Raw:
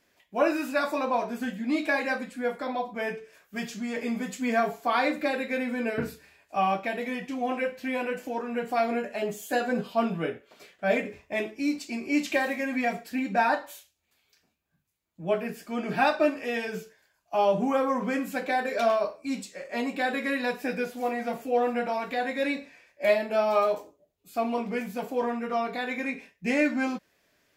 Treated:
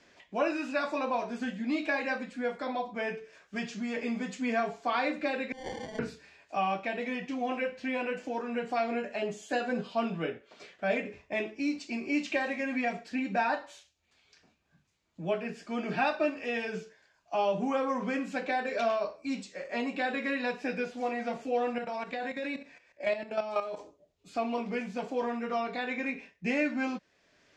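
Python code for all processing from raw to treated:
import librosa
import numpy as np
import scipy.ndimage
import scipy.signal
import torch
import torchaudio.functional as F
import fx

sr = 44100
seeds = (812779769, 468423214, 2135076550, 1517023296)

y = fx.chain(x, sr, fx.cheby1_highpass(hz=510.0, order=6),
    fx.over_compress(threshold_db=-40.0, ratio=-1.0),
    fx.sample_hold(seeds[0], rate_hz=1300.0, jitter_pct=0), at=(5.52, 5.99))
y = fx.chain(y, sr, fx.peak_eq(hz=7900.0, db=4.5, octaves=0.25),
    fx.level_steps(step_db=11), at=(21.78, 23.79))
y = fx.dynamic_eq(y, sr, hz=2700.0, q=6.0, threshold_db=-50.0, ratio=4.0, max_db=5)
y = scipy.signal.sosfilt(scipy.signal.butter(4, 6900.0, 'lowpass', fs=sr, output='sos'), y)
y = fx.band_squash(y, sr, depth_pct=40)
y = y * librosa.db_to_amplitude(-4.0)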